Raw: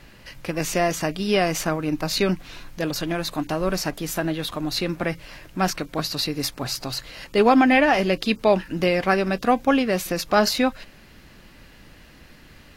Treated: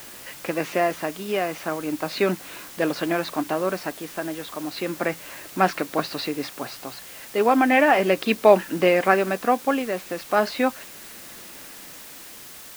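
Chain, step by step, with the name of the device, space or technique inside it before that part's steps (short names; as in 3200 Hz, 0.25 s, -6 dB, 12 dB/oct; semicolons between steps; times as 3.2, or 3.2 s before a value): shortwave radio (BPF 270–2600 Hz; tremolo 0.35 Hz, depth 59%; white noise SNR 18 dB); gain +4.5 dB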